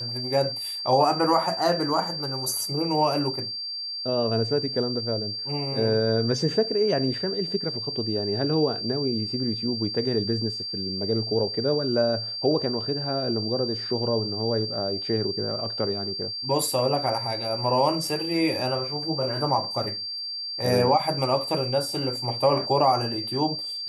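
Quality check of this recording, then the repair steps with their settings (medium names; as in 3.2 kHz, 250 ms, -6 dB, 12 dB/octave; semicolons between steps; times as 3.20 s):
whine 4.7 kHz -30 dBFS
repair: band-stop 4.7 kHz, Q 30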